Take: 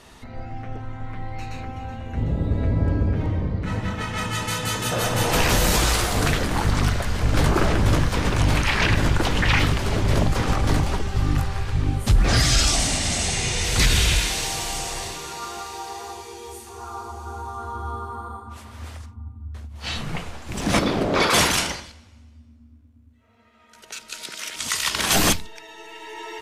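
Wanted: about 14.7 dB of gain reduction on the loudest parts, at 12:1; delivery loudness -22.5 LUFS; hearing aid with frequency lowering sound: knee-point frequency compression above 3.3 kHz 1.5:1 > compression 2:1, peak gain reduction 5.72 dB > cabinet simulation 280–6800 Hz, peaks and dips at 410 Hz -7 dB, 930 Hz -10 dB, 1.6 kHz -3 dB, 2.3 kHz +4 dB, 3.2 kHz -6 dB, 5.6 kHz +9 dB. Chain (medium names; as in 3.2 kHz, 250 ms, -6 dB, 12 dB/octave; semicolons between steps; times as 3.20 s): compression 12:1, threshold -27 dBFS; knee-point frequency compression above 3.3 kHz 1.5:1; compression 2:1, threshold -35 dBFS; cabinet simulation 280–6800 Hz, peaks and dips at 410 Hz -7 dB, 930 Hz -10 dB, 1.6 kHz -3 dB, 2.3 kHz +4 dB, 3.2 kHz -6 dB, 5.6 kHz +9 dB; trim +15.5 dB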